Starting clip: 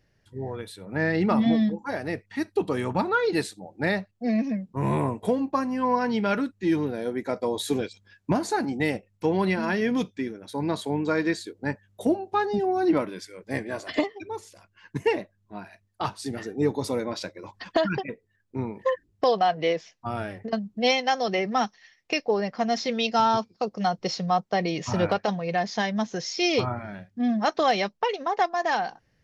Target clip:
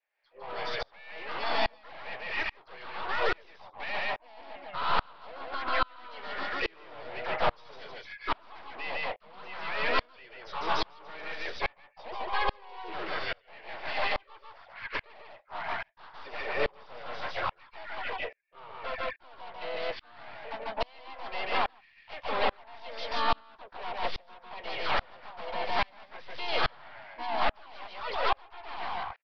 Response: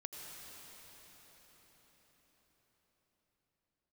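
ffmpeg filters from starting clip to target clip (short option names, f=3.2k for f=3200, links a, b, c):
-filter_complex "[0:a]highpass=f=630:w=0.5412,highpass=f=630:w=1.3066,adynamicequalizer=threshold=0.00562:dfrequency=1100:dqfactor=7:tfrequency=1100:tqfactor=7:attack=5:release=100:ratio=0.375:range=2.5:mode=boostabove:tftype=bell,acompressor=threshold=-26dB:ratio=10,asuperstop=centerf=2700:order=4:qfactor=3.2,apsyclip=22.5dB,aeval=exprs='(tanh(12.6*val(0)+0.4)-tanh(0.4))/12.6':c=same,asplit=2[a][b];[b]aecho=0:1:147:0.708[c];[a][c]amix=inputs=2:normalize=0,aresample=8000,aresample=44100,asplit=4[d][e][f][g];[e]asetrate=55563,aresample=44100,atempo=0.793701,volume=-4dB[h];[f]asetrate=58866,aresample=44100,atempo=0.749154,volume=-4dB[i];[g]asetrate=66075,aresample=44100,atempo=0.66742,volume=-11dB[j];[d][h][i][j]amix=inputs=4:normalize=0,aeval=exprs='val(0)*pow(10,-33*if(lt(mod(-1.2*n/s,1),2*abs(-1.2)/1000),1-mod(-1.2*n/s,1)/(2*abs(-1.2)/1000),(mod(-1.2*n/s,1)-2*abs(-1.2)/1000)/(1-2*abs(-1.2)/1000))/20)':c=same,volume=-4.5dB"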